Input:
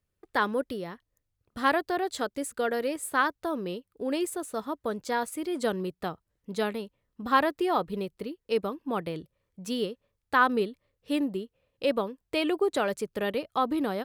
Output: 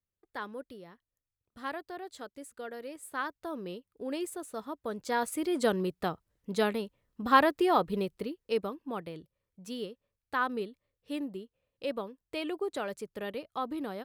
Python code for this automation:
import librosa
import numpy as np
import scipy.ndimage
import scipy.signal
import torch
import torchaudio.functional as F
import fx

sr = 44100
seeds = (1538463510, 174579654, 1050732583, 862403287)

y = fx.gain(x, sr, db=fx.line((2.8, -13.0), (3.65, -6.0), (4.82, -6.0), (5.32, 1.0), (8.12, 1.0), (9.1, -8.0)))